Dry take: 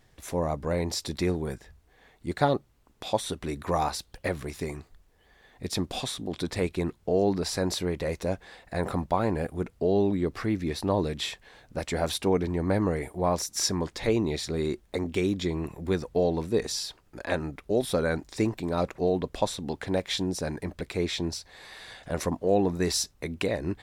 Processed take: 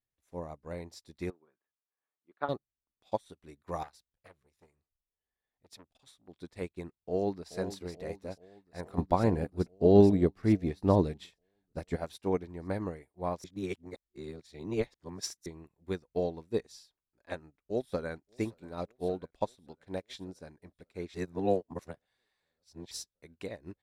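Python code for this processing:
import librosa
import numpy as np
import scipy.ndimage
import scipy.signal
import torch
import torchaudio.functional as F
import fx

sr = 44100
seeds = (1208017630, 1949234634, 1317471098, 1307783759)

y = fx.cabinet(x, sr, low_hz=380.0, low_slope=12, high_hz=2700.0, hz=(480.0, 760.0, 1200.0, 2000.0), db=(-5, -5, 6, -7), at=(1.3, 2.49))
y = fx.transformer_sat(y, sr, knee_hz=1200.0, at=(3.83, 6.28))
y = fx.echo_throw(y, sr, start_s=6.89, length_s=0.62, ms=430, feedback_pct=80, wet_db=-6.5)
y = fx.low_shelf(y, sr, hz=450.0, db=7.0, at=(8.98, 11.96))
y = fx.echo_throw(y, sr, start_s=17.34, length_s=0.8, ms=580, feedback_pct=75, wet_db=-14.0)
y = fx.edit(y, sr, fx.reverse_span(start_s=13.44, length_s=2.02),
    fx.reverse_span(start_s=21.14, length_s=1.77), tone=tone)
y = fx.upward_expand(y, sr, threshold_db=-41.0, expansion=2.5)
y = y * 10.0 ** (1.5 / 20.0)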